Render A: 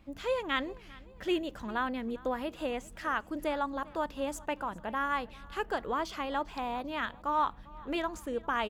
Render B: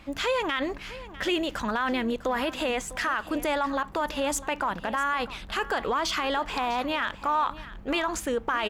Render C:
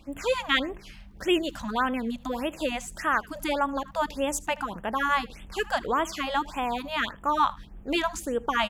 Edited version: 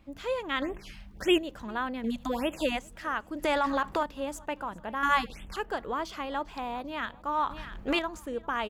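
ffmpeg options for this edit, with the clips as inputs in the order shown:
-filter_complex "[2:a]asplit=3[a][b][c];[1:a]asplit=2[d][e];[0:a]asplit=6[f][g][h][i][j][k];[f]atrim=end=0.622[l];[a]atrim=start=0.618:end=1.382[m];[g]atrim=start=1.378:end=2.042[n];[b]atrim=start=2.038:end=2.792[o];[h]atrim=start=2.788:end=3.442[p];[d]atrim=start=3.438:end=4.032[q];[i]atrim=start=4.028:end=5.032[r];[c]atrim=start=5.028:end=5.562[s];[j]atrim=start=5.558:end=7.502[t];[e]atrim=start=7.498:end=7.992[u];[k]atrim=start=7.988[v];[l][m]acrossfade=d=0.004:c1=hsin:c2=hsin[w];[w][n]acrossfade=d=0.004:c1=hsin:c2=hsin[x];[x][o]acrossfade=d=0.004:c1=hsin:c2=hsin[y];[y][p]acrossfade=d=0.004:c1=hsin:c2=hsin[z];[z][q]acrossfade=d=0.004:c1=hsin:c2=hsin[aa];[aa][r]acrossfade=d=0.004:c1=hsin:c2=hsin[ab];[ab][s]acrossfade=d=0.004:c1=hsin:c2=hsin[ac];[ac][t]acrossfade=d=0.004:c1=hsin:c2=hsin[ad];[ad][u]acrossfade=d=0.004:c1=hsin:c2=hsin[ae];[ae][v]acrossfade=d=0.004:c1=hsin:c2=hsin"

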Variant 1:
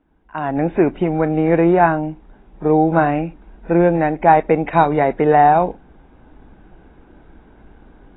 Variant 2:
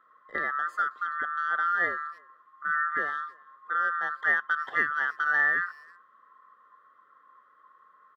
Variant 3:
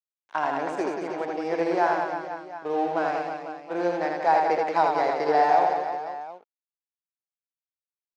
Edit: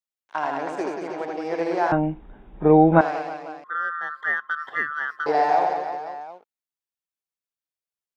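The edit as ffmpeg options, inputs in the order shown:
-filter_complex "[2:a]asplit=3[a][b][c];[a]atrim=end=1.922[d];[0:a]atrim=start=1.918:end=3.012[e];[b]atrim=start=3.008:end=3.642[f];[1:a]atrim=start=3.638:end=5.262[g];[c]atrim=start=5.258[h];[d][e]acrossfade=d=0.004:c1=hsin:c2=hsin[i];[i][f]acrossfade=d=0.004:c1=hsin:c2=hsin[j];[j][g]acrossfade=d=0.004:c1=hsin:c2=hsin[k];[k][h]acrossfade=d=0.004:c1=hsin:c2=hsin"

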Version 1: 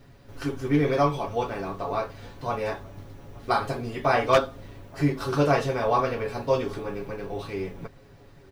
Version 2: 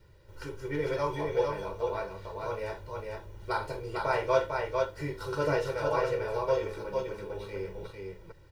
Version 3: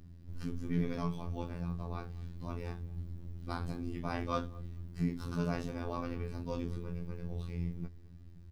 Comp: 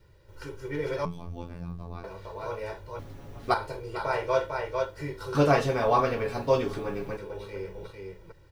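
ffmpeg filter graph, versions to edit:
-filter_complex "[0:a]asplit=2[a][b];[1:a]asplit=4[c][d][e][f];[c]atrim=end=1.052[g];[2:a]atrim=start=1.048:end=2.042[h];[d]atrim=start=2.038:end=2.992[i];[a]atrim=start=2.988:end=3.542[j];[e]atrim=start=3.538:end=5.352[k];[b]atrim=start=5.348:end=7.172[l];[f]atrim=start=7.168[m];[g][h]acrossfade=d=0.004:c1=hsin:c2=hsin[n];[n][i]acrossfade=d=0.004:c1=hsin:c2=hsin[o];[o][j]acrossfade=d=0.004:c1=hsin:c2=hsin[p];[p][k]acrossfade=d=0.004:c1=hsin:c2=hsin[q];[q][l]acrossfade=d=0.004:c1=hsin:c2=hsin[r];[r][m]acrossfade=d=0.004:c1=hsin:c2=hsin"

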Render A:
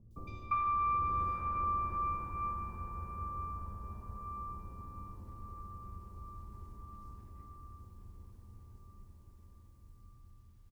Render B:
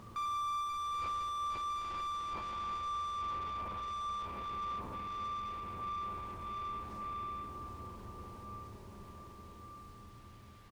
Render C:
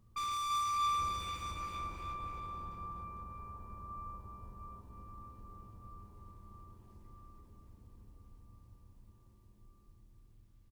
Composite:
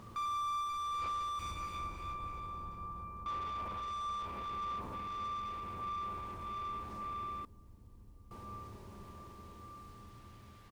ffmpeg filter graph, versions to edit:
-filter_complex "[2:a]asplit=2[a][b];[1:a]asplit=3[c][d][e];[c]atrim=end=1.392[f];[a]atrim=start=1.388:end=3.262[g];[d]atrim=start=3.258:end=7.452[h];[b]atrim=start=7.448:end=8.312[i];[e]atrim=start=8.308[j];[f][g]acrossfade=d=0.004:c1=hsin:c2=hsin[k];[k][h]acrossfade=d=0.004:c1=hsin:c2=hsin[l];[l][i]acrossfade=d=0.004:c1=hsin:c2=hsin[m];[m][j]acrossfade=d=0.004:c1=hsin:c2=hsin"

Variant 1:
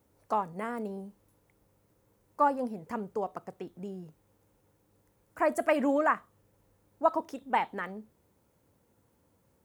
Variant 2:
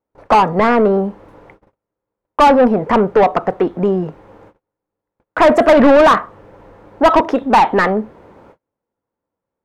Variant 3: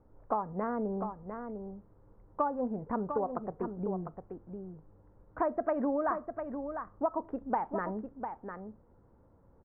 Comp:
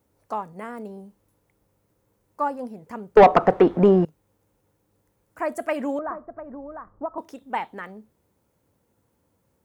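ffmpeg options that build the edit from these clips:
-filter_complex "[0:a]asplit=3[a][b][c];[a]atrim=end=3.172[d];[1:a]atrim=start=3.168:end=4.052[e];[b]atrim=start=4.048:end=5.992[f];[2:a]atrim=start=5.988:end=7.182[g];[c]atrim=start=7.178[h];[d][e]acrossfade=d=0.004:c1=hsin:c2=hsin[i];[i][f]acrossfade=d=0.004:c1=hsin:c2=hsin[j];[j][g]acrossfade=d=0.004:c1=hsin:c2=hsin[k];[k][h]acrossfade=d=0.004:c1=hsin:c2=hsin"

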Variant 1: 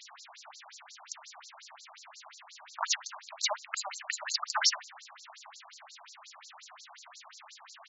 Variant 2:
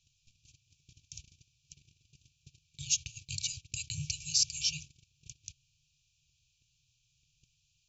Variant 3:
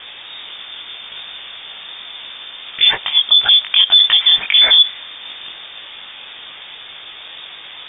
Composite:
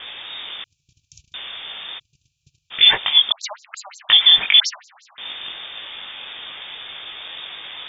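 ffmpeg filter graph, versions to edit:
-filter_complex "[1:a]asplit=2[a][b];[0:a]asplit=2[c][d];[2:a]asplit=5[e][f][g][h][i];[e]atrim=end=0.642[j];[a]atrim=start=0.638:end=1.342[k];[f]atrim=start=1.338:end=2[l];[b]atrim=start=1.98:end=2.72[m];[g]atrim=start=2.7:end=3.322[n];[c]atrim=start=3.318:end=4.092[o];[h]atrim=start=4.088:end=4.602[p];[d]atrim=start=4.598:end=5.182[q];[i]atrim=start=5.178[r];[j][k]acrossfade=d=0.004:c1=hsin:c2=hsin[s];[s][l]acrossfade=d=0.004:c1=hsin:c2=hsin[t];[t][m]acrossfade=d=0.02:c1=tri:c2=tri[u];[u][n]acrossfade=d=0.02:c1=tri:c2=tri[v];[v][o]acrossfade=d=0.004:c1=hsin:c2=hsin[w];[w][p]acrossfade=d=0.004:c1=hsin:c2=hsin[x];[x][q]acrossfade=d=0.004:c1=hsin:c2=hsin[y];[y][r]acrossfade=d=0.004:c1=hsin:c2=hsin"

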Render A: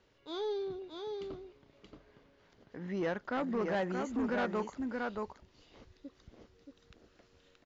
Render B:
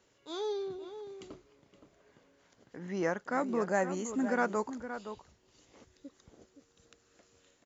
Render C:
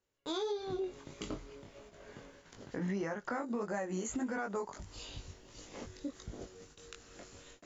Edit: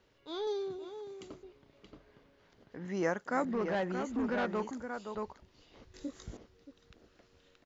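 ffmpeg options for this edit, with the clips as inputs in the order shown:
-filter_complex "[1:a]asplit=3[a][b][c];[0:a]asplit=5[d][e][f][g][h];[d]atrim=end=0.472[i];[a]atrim=start=0.468:end=1.432[j];[e]atrim=start=1.428:end=2.852[k];[b]atrim=start=2.848:end=3.452[l];[f]atrim=start=3.448:end=4.712[m];[c]atrim=start=4.708:end=5.152[n];[g]atrim=start=5.148:end=5.942[o];[2:a]atrim=start=5.938:end=6.372[p];[h]atrim=start=6.368[q];[i][j]acrossfade=d=0.004:c1=hsin:c2=hsin[r];[r][k]acrossfade=d=0.004:c1=hsin:c2=hsin[s];[s][l]acrossfade=d=0.004:c1=hsin:c2=hsin[t];[t][m]acrossfade=d=0.004:c1=hsin:c2=hsin[u];[u][n]acrossfade=d=0.004:c1=hsin:c2=hsin[v];[v][o]acrossfade=d=0.004:c1=hsin:c2=hsin[w];[w][p]acrossfade=d=0.004:c1=hsin:c2=hsin[x];[x][q]acrossfade=d=0.004:c1=hsin:c2=hsin"

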